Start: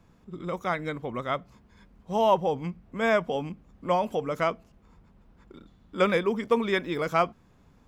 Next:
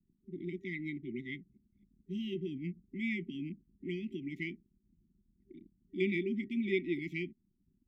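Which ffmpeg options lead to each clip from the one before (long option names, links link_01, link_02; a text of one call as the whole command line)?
ffmpeg -i in.wav -filter_complex "[0:a]anlmdn=0.00398,afftfilt=real='re*(1-between(b*sr/4096,390,1900))':imag='im*(1-between(b*sr/4096,390,1900))':win_size=4096:overlap=0.75,acrossover=split=180 2600:gain=0.2 1 0.0794[link_01][link_02][link_03];[link_01][link_02][link_03]amix=inputs=3:normalize=0,volume=-1.5dB" out.wav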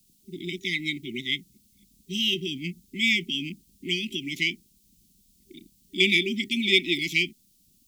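ffmpeg -i in.wav -af "aexciter=amount=7.1:drive=9.8:freq=2600,volume=5dB" out.wav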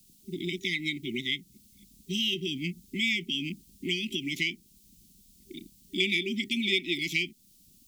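ffmpeg -i in.wav -af "acompressor=threshold=-35dB:ratio=2,volume=3.5dB" out.wav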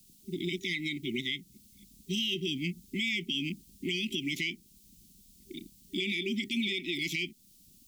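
ffmpeg -i in.wav -af "alimiter=limit=-22.5dB:level=0:latency=1:release=27" out.wav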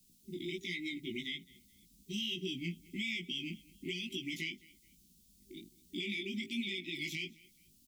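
ffmpeg -i in.wav -af "flanger=delay=16:depth=3.8:speed=1.2,aecho=1:1:213|426:0.0708|0.0212,volume=-3.5dB" out.wav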